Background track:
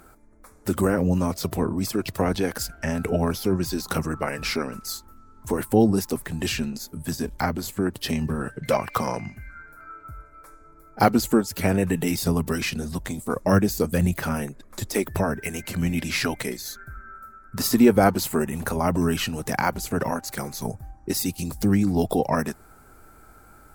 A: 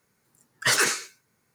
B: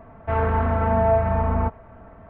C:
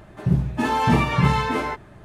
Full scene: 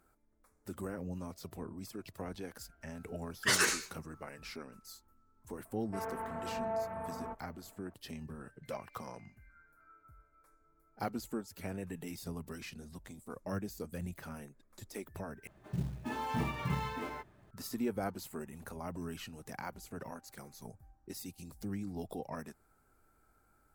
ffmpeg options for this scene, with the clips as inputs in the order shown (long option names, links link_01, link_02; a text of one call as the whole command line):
ffmpeg -i bed.wav -i cue0.wav -i cue1.wav -i cue2.wav -filter_complex "[0:a]volume=-19.5dB[link_01];[2:a]highpass=220[link_02];[3:a]acrusher=bits=6:mode=log:mix=0:aa=0.000001[link_03];[link_01]asplit=2[link_04][link_05];[link_04]atrim=end=15.474[link_06];[link_03]atrim=end=2.04,asetpts=PTS-STARTPTS,volume=-16.5dB[link_07];[link_05]atrim=start=17.506[link_08];[1:a]atrim=end=1.54,asetpts=PTS-STARTPTS,volume=-7dB,afade=type=in:duration=0.004:curve=hsin,afade=type=out:start_time=1.536:duration=0.004:curve=hsin,adelay=2810[link_09];[link_02]atrim=end=2.29,asetpts=PTS-STARTPTS,volume=-16.5dB,afade=type=in:duration=0.004:curve=hsin,afade=type=out:start_time=2.286:duration=0.004:curve=hsin,adelay=249165S[link_10];[link_06][link_07]acrossfade=duration=0.004:curve1=hsin:curve2=hsin[link_11];[link_11][link_08]acrossfade=duration=0.004:curve1=hsin:curve2=hsin[link_12];[link_12][link_09][link_10]amix=inputs=3:normalize=0" out.wav